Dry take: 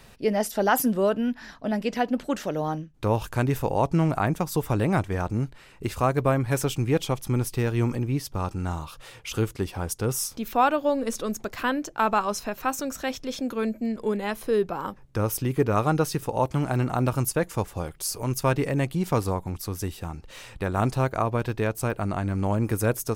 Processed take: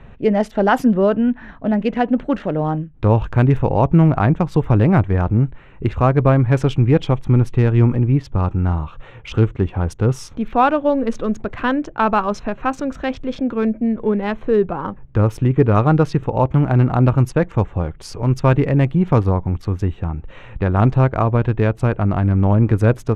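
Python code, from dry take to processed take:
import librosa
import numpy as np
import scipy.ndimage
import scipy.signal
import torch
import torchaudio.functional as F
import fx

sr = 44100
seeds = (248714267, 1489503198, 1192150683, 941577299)

y = fx.wiener(x, sr, points=9)
y = scipy.signal.sosfilt(scipy.signal.butter(2, 3800.0, 'lowpass', fs=sr, output='sos'), y)
y = fx.low_shelf(y, sr, hz=210.0, db=8.5)
y = y * librosa.db_to_amplitude(5.5)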